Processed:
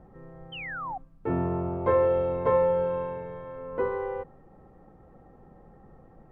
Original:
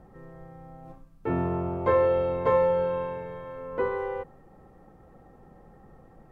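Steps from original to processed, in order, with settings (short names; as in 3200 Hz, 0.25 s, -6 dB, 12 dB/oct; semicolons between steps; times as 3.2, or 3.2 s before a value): painted sound fall, 0.52–0.98, 720–3200 Hz -33 dBFS; high shelf 2900 Hz -12 dB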